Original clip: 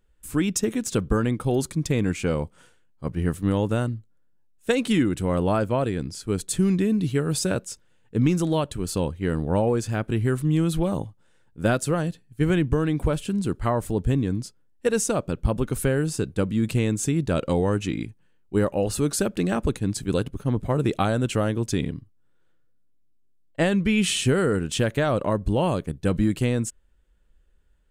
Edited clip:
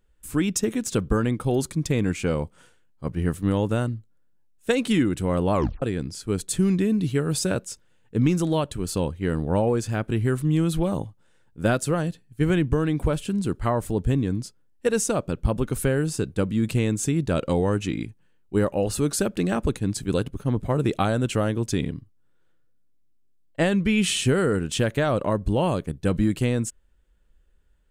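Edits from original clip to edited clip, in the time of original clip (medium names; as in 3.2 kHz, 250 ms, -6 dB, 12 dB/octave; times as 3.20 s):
5.53 s: tape stop 0.29 s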